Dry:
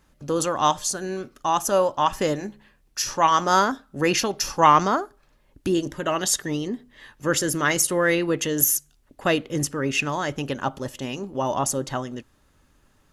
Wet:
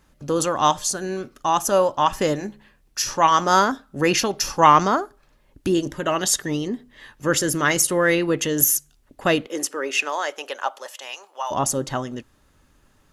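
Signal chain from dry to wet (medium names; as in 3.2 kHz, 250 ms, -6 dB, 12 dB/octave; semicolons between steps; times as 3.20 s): 9.46–11.50 s: high-pass 310 Hz -> 830 Hz 24 dB/octave; trim +2 dB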